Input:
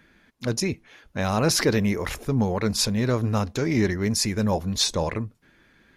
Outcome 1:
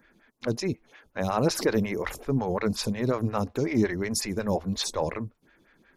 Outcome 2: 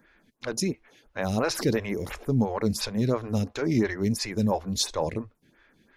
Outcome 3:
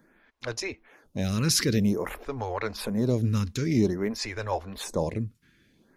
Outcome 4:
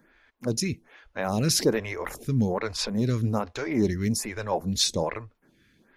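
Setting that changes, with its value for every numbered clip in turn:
phaser with staggered stages, speed: 5.5, 2.9, 0.51, 1.2 Hertz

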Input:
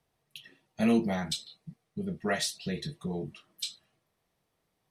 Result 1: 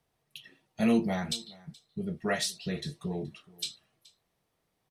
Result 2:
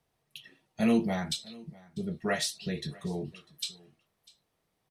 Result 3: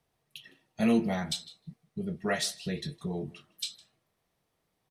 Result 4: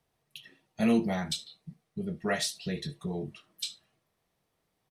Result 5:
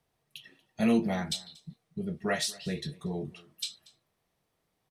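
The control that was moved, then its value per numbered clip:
single-tap delay, delay time: 425, 647, 158, 70, 235 milliseconds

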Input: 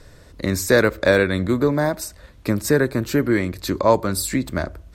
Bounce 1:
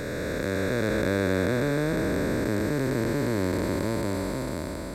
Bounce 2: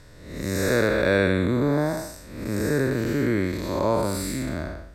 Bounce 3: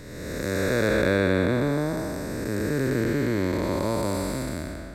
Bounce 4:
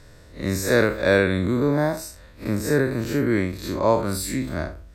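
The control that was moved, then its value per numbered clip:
spectrum smeared in time, width: 1,730, 271, 666, 108 milliseconds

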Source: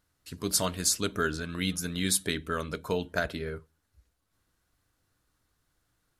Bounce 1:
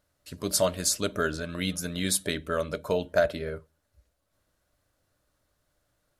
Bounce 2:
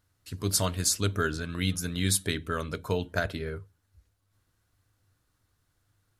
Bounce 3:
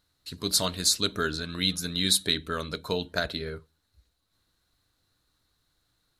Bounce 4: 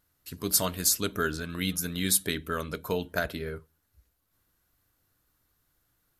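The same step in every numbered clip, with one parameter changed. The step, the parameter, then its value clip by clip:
parametric band, centre frequency: 590, 100, 4,000, 13,000 Hertz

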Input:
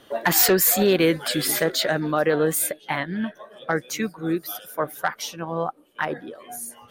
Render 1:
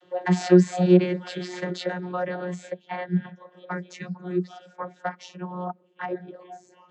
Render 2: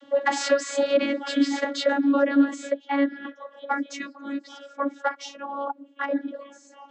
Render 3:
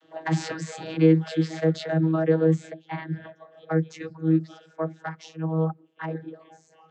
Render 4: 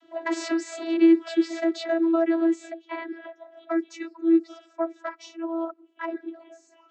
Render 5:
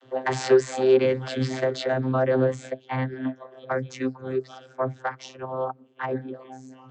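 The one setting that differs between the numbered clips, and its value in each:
channel vocoder, frequency: 180, 280, 160, 330, 130 Hertz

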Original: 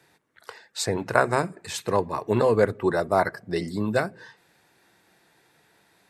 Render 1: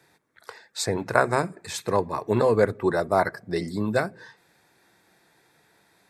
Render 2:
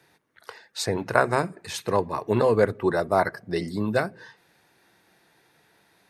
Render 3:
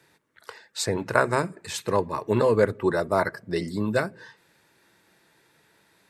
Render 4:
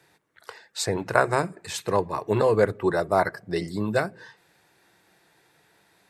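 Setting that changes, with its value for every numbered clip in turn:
notch filter, centre frequency: 2,900, 7,600, 740, 240 Hertz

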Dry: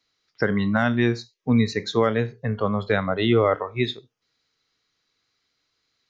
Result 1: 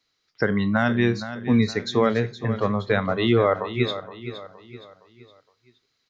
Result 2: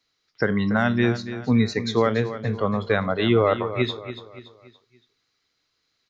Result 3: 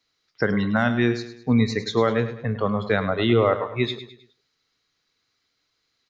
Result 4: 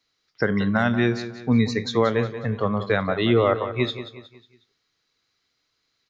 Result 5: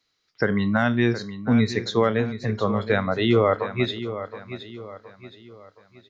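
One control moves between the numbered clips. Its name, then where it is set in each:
repeating echo, delay time: 467, 285, 104, 182, 719 milliseconds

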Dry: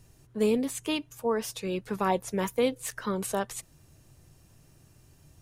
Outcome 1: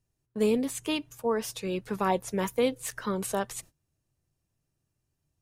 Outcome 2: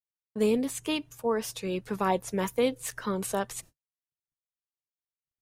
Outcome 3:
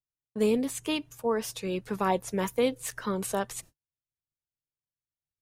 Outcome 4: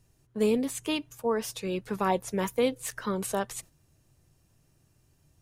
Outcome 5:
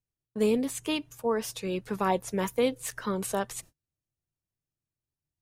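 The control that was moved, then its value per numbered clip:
noise gate, range: −22, −60, −47, −8, −35 decibels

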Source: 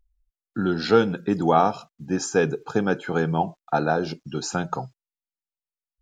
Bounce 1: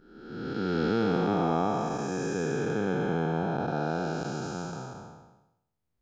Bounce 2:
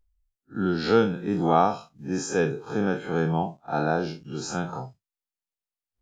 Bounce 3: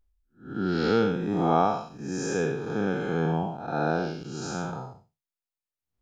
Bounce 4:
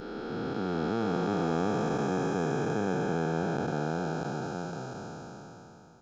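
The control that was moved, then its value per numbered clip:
spectrum smeared in time, width: 675, 89, 221, 1,730 milliseconds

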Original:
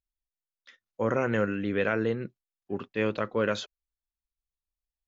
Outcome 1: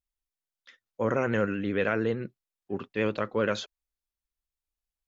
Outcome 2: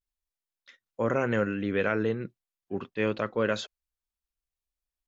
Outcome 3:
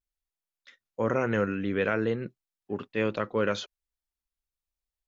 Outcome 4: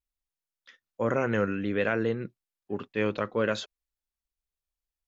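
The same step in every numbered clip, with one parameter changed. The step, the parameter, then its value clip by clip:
pitch vibrato, speed: 13, 0.32, 0.48, 1.2 Hertz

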